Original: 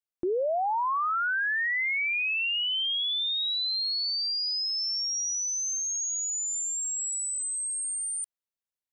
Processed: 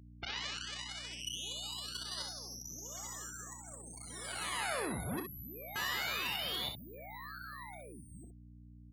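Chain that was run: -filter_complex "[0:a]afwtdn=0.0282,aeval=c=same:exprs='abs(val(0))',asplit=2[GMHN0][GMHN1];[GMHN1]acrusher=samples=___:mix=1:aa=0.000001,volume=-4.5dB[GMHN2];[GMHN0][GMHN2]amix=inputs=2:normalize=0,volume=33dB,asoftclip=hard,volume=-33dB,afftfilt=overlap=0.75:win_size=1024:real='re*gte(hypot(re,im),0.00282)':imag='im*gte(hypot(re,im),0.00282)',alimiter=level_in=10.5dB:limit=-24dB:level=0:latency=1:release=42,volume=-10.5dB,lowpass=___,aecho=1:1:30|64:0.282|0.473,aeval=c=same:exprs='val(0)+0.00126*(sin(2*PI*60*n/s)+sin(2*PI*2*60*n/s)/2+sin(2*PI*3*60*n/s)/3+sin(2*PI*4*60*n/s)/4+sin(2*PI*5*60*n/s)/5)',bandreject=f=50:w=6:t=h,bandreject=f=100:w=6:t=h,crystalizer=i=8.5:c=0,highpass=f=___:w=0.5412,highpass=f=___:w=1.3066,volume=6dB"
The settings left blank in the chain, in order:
15, 3400, 56, 56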